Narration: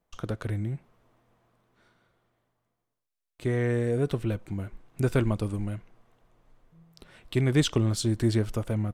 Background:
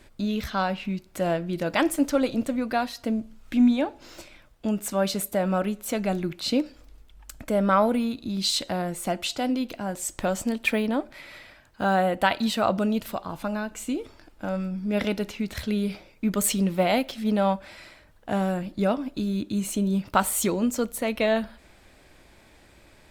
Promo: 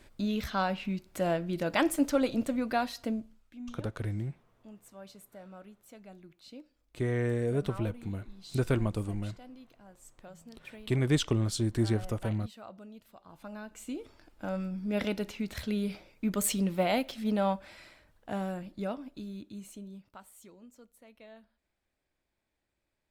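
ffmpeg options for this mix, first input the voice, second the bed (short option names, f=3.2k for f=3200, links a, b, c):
-filter_complex "[0:a]adelay=3550,volume=-3.5dB[a];[1:a]volume=15dB,afade=t=out:st=2.98:d=0.53:silence=0.0944061,afade=t=in:st=13.14:d=1.35:silence=0.112202,afade=t=out:st=17.42:d=2.76:silence=0.0630957[b];[a][b]amix=inputs=2:normalize=0"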